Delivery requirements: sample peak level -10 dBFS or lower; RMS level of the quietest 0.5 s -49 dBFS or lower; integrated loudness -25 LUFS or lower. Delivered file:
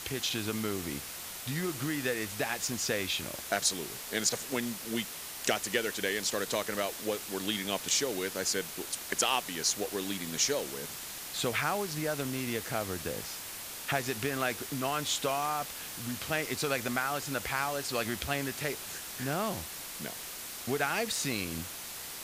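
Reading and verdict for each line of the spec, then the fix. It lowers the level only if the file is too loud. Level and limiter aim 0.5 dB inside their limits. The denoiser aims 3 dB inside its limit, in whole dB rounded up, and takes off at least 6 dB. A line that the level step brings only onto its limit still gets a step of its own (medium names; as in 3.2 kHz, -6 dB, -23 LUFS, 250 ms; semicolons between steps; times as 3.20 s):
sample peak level -13.0 dBFS: pass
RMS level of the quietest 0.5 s -42 dBFS: fail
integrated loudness -32.5 LUFS: pass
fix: noise reduction 10 dB, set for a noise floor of -42 dBFS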